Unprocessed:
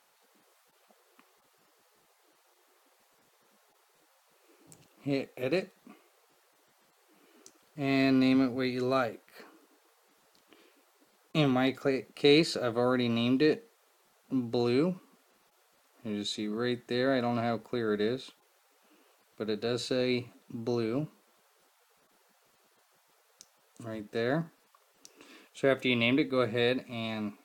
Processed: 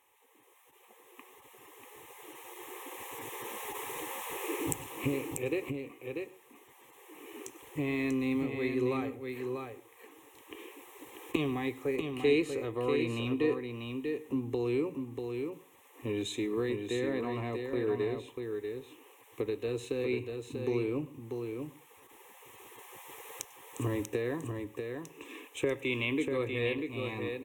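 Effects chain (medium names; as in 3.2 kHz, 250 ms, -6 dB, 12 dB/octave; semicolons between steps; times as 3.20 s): recorder AGC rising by 8.1 dB/s; high-pass 47 Hz; bass shelf 140 Hz +10 dB; in parallel at 0 dB: compression, threshold -38 dBFS, peak gain reduction 20 dB; on the sum: static phaser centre 960 Hz, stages 8; delay 641 ms -5.5 dB; on a send at -21 dB: reverberation RT60 0.35 s, pre-delay 94 ms; on the sum: trim -5 dB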